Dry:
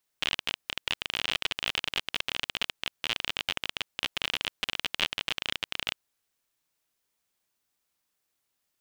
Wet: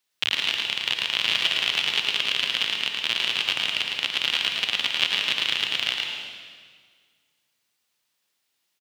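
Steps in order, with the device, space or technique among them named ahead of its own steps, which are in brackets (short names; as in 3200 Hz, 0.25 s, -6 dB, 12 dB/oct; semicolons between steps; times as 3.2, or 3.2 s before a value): PA in a hall (HPF 100 Hz 24 dB/oct; bell 3400 Hz +7 dB 1.9 oct; echo 0.111 s -4 dB; reverb RT60 1.8 s, pre-delay 82 ms, DRR 3 dB); gain -1 dB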